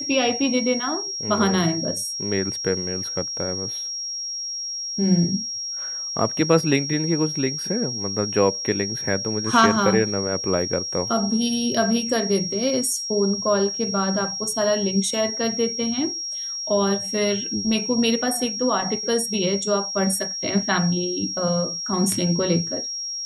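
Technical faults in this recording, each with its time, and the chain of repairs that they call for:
whistle 5,600 Hz −27 dBFS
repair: notch filter 5,600 Hz, Q 30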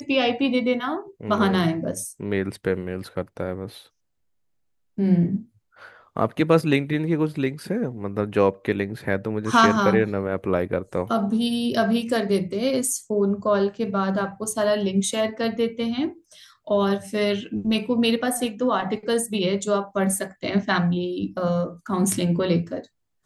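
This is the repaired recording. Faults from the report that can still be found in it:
none of them is left

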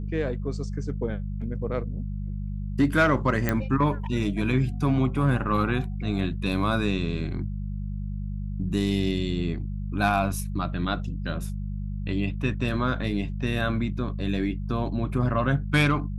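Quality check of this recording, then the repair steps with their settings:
mains hum 50 Hz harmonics 4 −31 dBFS
0:03.49: click −10 dBFS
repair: click removal
hum removal 50 Hz, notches 4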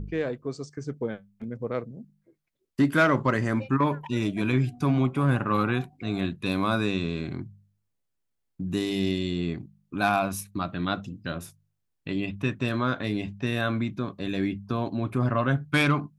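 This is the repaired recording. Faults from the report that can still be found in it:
none of them is left

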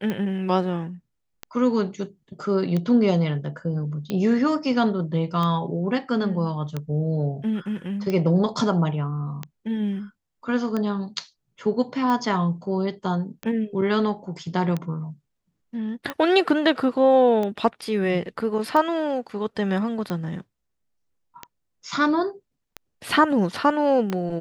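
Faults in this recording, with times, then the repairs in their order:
scratch tick 45 rpm −15 dBFS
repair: click removal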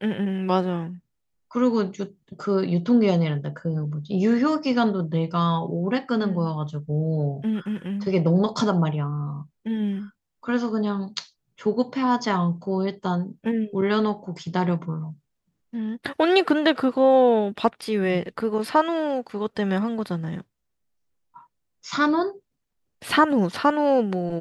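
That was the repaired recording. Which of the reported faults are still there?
none of them is left

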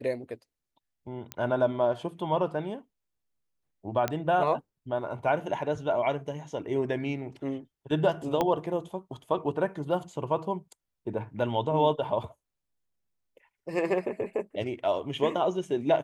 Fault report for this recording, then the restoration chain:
0:01.32: click −17 dBFS
0:04.08: click −13 dBFS
0:08.41: click −13 dBFS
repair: click removal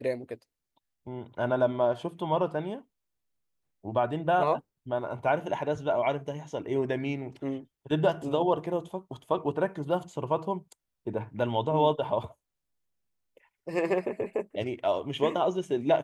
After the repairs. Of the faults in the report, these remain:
0:04.08: click
0:08.41: click

